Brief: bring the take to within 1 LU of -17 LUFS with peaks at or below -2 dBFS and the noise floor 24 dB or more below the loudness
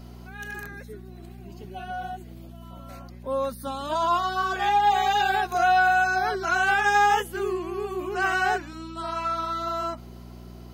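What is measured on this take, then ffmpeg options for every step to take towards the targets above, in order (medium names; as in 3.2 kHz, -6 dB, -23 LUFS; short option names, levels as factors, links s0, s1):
hum 60 Hz; highest harmonic 240 Hz; hum level -41 dBFS; loudness -24.0 LUFS; peak level -10.5 dBFS; loudness target -17.0 LUFS
-> -af "bandreject=f=60:t=h:w=4,bandreject=f=120:t=h:w=4,bandreject=f=180:t=h:w=4,bandreject=f=240:t=h:w=4"
-af "volume=2.24"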